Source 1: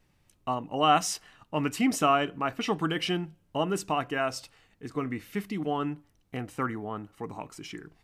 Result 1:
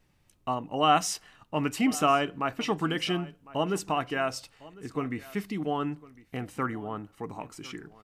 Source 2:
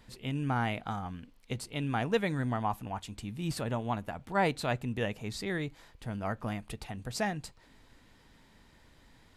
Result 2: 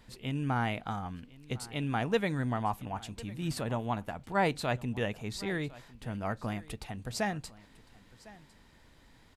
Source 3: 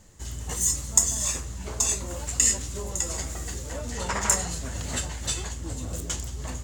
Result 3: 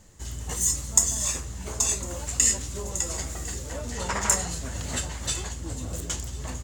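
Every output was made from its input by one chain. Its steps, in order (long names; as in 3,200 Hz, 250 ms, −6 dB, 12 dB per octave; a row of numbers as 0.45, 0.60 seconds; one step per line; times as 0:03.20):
single-tap delay 1,054 ms −20.5 dB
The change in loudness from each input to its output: 0.0, 0.0, 0.0 LU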